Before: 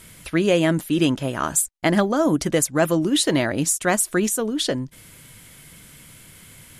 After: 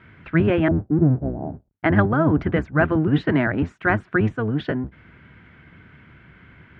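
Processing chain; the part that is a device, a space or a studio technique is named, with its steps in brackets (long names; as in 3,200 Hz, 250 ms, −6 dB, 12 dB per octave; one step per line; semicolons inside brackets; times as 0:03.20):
0:00.68–0:01.71: Butterworth low-pass 790 Hz 72 dB per octave
sub-octave bass pedal (sub-octave generator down 1 octave, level +2 dB; loudspeaker in its box 74–2,300 Hz, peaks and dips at 80 Hz −4 dB, 530 Hz −6 dB, 1,500 Hz +7 dB)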